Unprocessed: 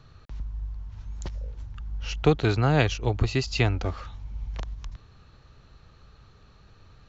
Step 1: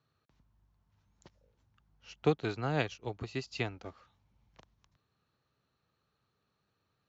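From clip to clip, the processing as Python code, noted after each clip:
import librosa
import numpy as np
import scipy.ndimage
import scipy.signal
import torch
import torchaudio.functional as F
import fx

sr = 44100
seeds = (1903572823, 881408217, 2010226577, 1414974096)

y = scipy.signal.sosfilt(scipy.signal.butter(2, 150.0, 'highpass', fs=sr, output='sos'), x)
y = fx.upward_expand(y, sr, threshold_db=-45.0, expansion=1.5)
y = F.gain(torch.from_numpy(y), -6.0).numpy()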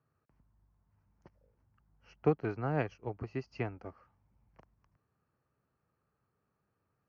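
y = np.convolve(x, np.full(12, 1.0 / 12))[:len(x)]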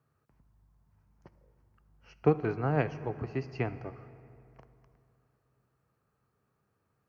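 y = fx.rev_fdn(x, sr, rt60_s=2.8, lf_ratio=1.0, hf_ratio=0.6, size_ms=43.0, drr_db=12.0)
y = F.gain(torch.from_numpy(y), 3.5).numpy()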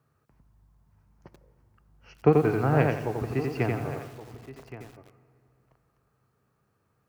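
y = x + 10.0 ** (-15.0 / 20.0) * np.pad(x, (int(1122 * sr / 1000.0), 0))[:len(x)]
y = fx.echo_crushed(y, sr, ms=87, feedback_pct=35, bits=9, wet_db=-3.0)
y = F.gain(torch.from_numpy(y), 4.5).numpy()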